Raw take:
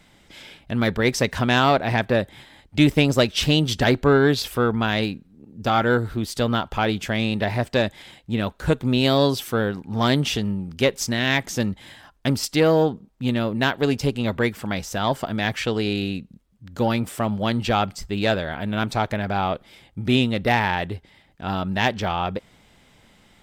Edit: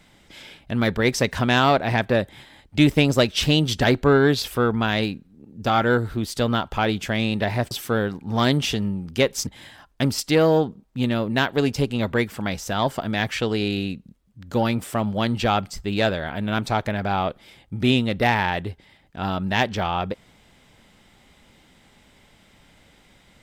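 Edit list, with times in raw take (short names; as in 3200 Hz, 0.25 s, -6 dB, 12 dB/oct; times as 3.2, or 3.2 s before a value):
7.71–9.34 cut
11.1–11.72 cut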